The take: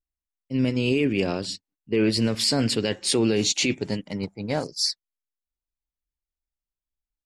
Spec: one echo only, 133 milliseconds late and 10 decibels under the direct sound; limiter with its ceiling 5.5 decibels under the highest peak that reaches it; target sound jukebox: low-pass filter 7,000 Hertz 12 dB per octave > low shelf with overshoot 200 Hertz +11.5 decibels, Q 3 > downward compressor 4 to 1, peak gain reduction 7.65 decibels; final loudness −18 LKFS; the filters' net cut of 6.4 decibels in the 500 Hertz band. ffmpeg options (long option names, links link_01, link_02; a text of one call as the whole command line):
ffmpeg -i in.wav -af "equalizer=frequency=500:width_type=o:gain=-4,alimiter=limit=-17dB:level=0:latency=1,lowpass=7000,lowshelf=frequency=200:width_type=q:width=3:gain=11.5,aecho=1:1:133:0.316,acompressor=threshold=-18dB:ratio=4,volume=5.5dB" out.wav